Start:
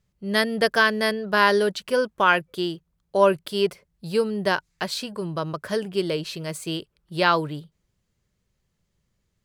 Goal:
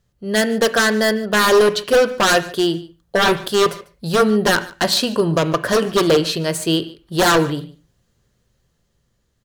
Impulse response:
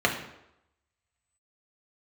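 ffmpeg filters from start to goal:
-filter_complex "[0:a]dynaudnorm=f=500:g=5:m=3.98,aeval=exprs='0.168*(abs(mod(val(0)/0.168+3,4)-2)-1)':c=same,aecho=1:1:146:0.0891,asplit=2[s0][s1];[1:a]atrim=start_sample=2205,atrim=end_sample=6174[s2];[s1][s2]afir=irnorm=-1:irlink=0,volume=0.0944[s3];[s0][s3]amix=inputs=2:normalize=0,volume=1.78"

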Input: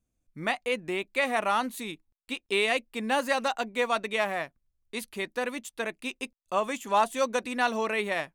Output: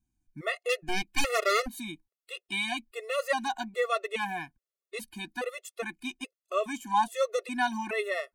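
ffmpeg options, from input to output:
-filter_complex "[0:a]asettb=1/sr,asplit=3[s0][s1][s2];[s0]atrim=end=0.694[s3];[s1]atrim=start=0.69:end=1.68,asetpts=PTS-STARTPTS,afade=t=in:d=0.004:c=qsin,afade=t=out:st=0.986:d=0.004:c=qsin,aeval=exprs='0.211*(cos(1*acos(clip(val(0)/0.211,-1,1)))-cos(1*PI/2))+0.0841*(cos(6*acos(clip(val(0)/0.211,-1,1)))-cos(6*PI/2))':c=same[s4];[s2]atrim=start=1.676[s5];[s3][s4]acrossfade=d=0.004:c1=hsin:c2=qsin[s6];[s6][s5]acrossfade=d=0.004:c1=qsin:c2=hsin,afftfilt=real='re*gt(sin(2*PI*1.2*pts/sr)*(1-2*mod(floor(b*sr/1024/360),2)),0)':imag='im*gt(sin(2*PI*1.2*pts/sr)*(1-2*mod(floor(b*sr/1024/360),2)),0)':win_size=1024:overlap=0.75"

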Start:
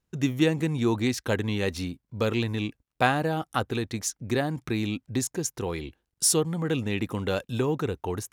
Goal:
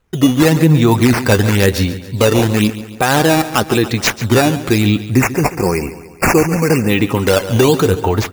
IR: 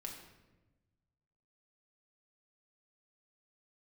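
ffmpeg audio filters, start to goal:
-filter_complex "[0:a]flanger=delay=1.9:depth=9.5:regen=44:speed=0.32:shape=triangular,acrusher=samples=8:mix=1:aa=0.000001:lfo=1:lforange=12.8:lforate=0.96,asplit=3[s0][s1][s2];[s0]afade=t=out:st=5.05:d=0.02[s3];[s1]asuperstop=centerf=3500:order=20:qfactor=2.1,afade=t=in:st=5.05:d=0.02,afade=t=out:st=6.88:d=0.02[s4];[s2]afade=t=in:st=6.88:d=0.02[s5];[s3][s4][s5]amix=inputs=3:normalize=0,asplit=2[s6][s7];[s7]aecho=0:1:140|280|420|560|700:0.178|0.0925|0.0481|0.025|0.013[s8];[s6][s8]amix=inputs=2:normalize=0,alimiter=level_in=10.6:limit=0.891:release=50:level=0:latency=1,volume=0.891"

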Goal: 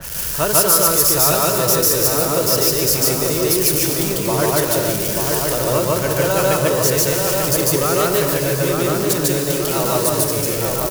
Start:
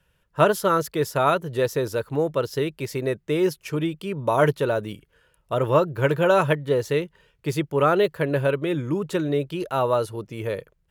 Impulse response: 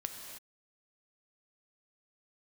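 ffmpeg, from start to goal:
-filter_complex "[0:a]aeval=exprs='val(0)+0.5*0.0531*sgn(val(0))':c=same,asplit=2[s0][s1];[1:a]atrim=start_sample=2205,adelay=147[s2];[s1][s2]afir=irnorm=-1:irlink=0,volume=1.33[s3];[s0][s3]amix=inputs=2:normalize=0,aexciter=amount=2.9:drive=6.4:freq=4800,asplit=2[s4][s5];[s5]adelay=888,lowpass=f=1800:p=1,volume=0.668,asplit=2[s6][s7];[s7]adelay=888,lowpass=f=1800:p=1,volume=0.54,asplit=2[s8][s9];[s9]adelay=888,lowpass=f=1800:p=1,volume=0.54,asplit=2[s10][s11];[s11]adelay=888,lowpass=f=1800:p=1,volume=0.54,asplit=2[s12][s13];[s13]adelay=888,lowpass=f=1800:p=1,volume=0.54,asplit=2[s14][s15];[s15]adelay=888,lowpass=f=1800:p=1,volume=0.54,asplit=2[s16][s17];[s17]adelay=888,lowpass=f=1800:p=1,volume=0.54[s18];[s4][s6][s8][s10][s12][s14][s16][s18]amix=inputs=8:normalize=0,adynamicequalizer=threshold=0.0224:dfrequency=2700:dqfactor=0.7:tfrequency=2700:tqfactor=0.7:attack=5:release=100:ratio=0.375:range=3:mode=boostabove:tftype=highshelf,volume=0.631"

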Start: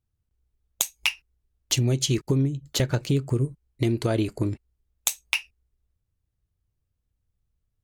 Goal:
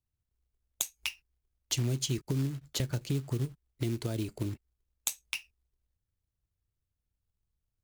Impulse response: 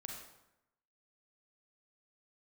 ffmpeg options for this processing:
-filter_complex "[0:a]acrusher=bits=4:mode=log:mix=0:aa=0.000001,acrossover=split=300|3000[s0][s1][s2];[s1]acompressor=threshold=0.0251:ratio=6[s3];[s0][s3][s2]amix=inputs=3:normalize=0,volume=0.422"

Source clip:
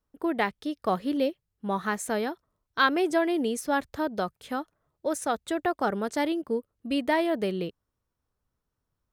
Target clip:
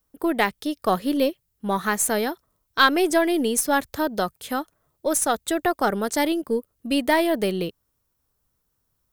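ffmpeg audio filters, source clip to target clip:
-af "aemphasis=mode=production:type=50kf,aeval=exprs='0.355*(cos(1*acos(clip(val(0)/0.355,-1,1)))-cos(1*PI/2))+0.00891*(cos(6*acos(clip(val(0)/0.355,-1,1)))-cos(6*PI/2))':c=same,volume=1.68"

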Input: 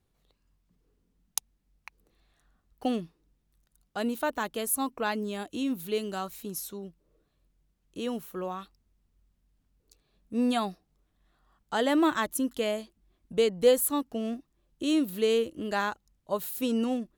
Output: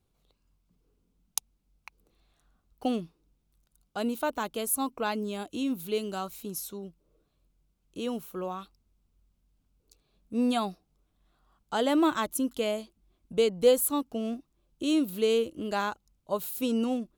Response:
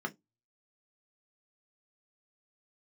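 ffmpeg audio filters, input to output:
-af "equalizer=f=1800:t=o:w=0.23:g=-9.5"

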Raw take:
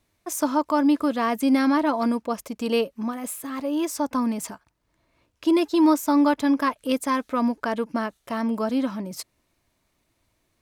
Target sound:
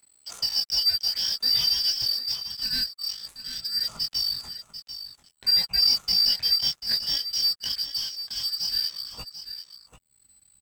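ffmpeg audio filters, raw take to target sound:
-af "afftfilt=real='real(if(lt(b,272),68*(eq(floor(b/68),0)*3+eq(floor(b/68),1)*2+eq(floor(b/68),2)*1+eq(floor(b/68),3)*0)+mod(b,68),b),0)':imag='imag(if(lt(b,272),68*(eq(floor(b/68),0)*3+eq(floor(b/68),1)*2+eq(floor(b/68),2)*1+eq(floor(b/68),3)*0)+mod(b,68),b),0)':win_size=2048:overlap=0.75,aeval=exprs='val(0)+0.01*sin(2*PI*8000*n/s)':c=same,asubboost=boost=5:cutoff=170,flanger=delay=17:depth=7.4:speed=0.53,adynamicsmooth=sensitivity=7.5:basefreq=2200,adynamicequalizer=threshold=0.00316:dfrequency=7900:dqfactor=5.5:tfrequency=7900:tqfactor=5.5:attack=5:release=100:ratio=0.375:range=3:mode=cutabove:tftype=bell,aecho=1:1:741:0.282,acompressor=mode=upward:threshold=0.00708:ratio=2.5,aeval=exprs='sgn(val(0))*max(abs(val(0))-0.00112,0)':c=same"

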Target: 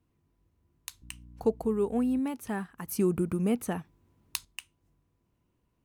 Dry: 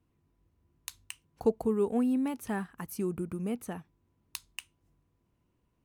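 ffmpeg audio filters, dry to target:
-filter_complex "[0:a]asettb=1/sr,asplit=3[s0][s1][s2];[s0]atrim=end=1.024[s3];[s1]atrim=start=1.02:end=2.2,asetpts=PTS-STARTPTS,afade=t=in:d=0.004:c=qsin,afade=t=out:st=1.176:d=0.004:c=qsin,aeval=exprs='val(0)+0.00355*(sin(2*PI*60*n/s)+sin(2*PI*2*60*n/s)/2+sin(2*PI*3*60*n/s)/3+sin(2*PI*4*60*n/s)/4+sin(2*PI*5*60*n/s)/5)':c=same[s4];[s2]atrim=start=2.196[s5];[s3][s4]acrossfade=d=0.004:c1=hsin:c2=qsin[s6];[s6][s5]acrossfade=d=0.004:c1=qsin:c2=hsin,asettb=1/sr,asplit=3[s7][s8][s9];[s7]atrim=end=2.874[s10];[s8]atrim=start=2.87:end=4.45,asetpts=PTS-STARTPTS,afade=t=in:d=0.004:c=qsin,afade=t=out:st=1.576:d=0.004:c=qsin,acontrast=64[s11];[s9]atrim=start=4.446[s12];[s10][s11]acrossfade=d=0.004:c1=hsin:c2=qsin[s13];[s13][s12]acrossfade=d=0.004:c1=qsin:c2=hsin"

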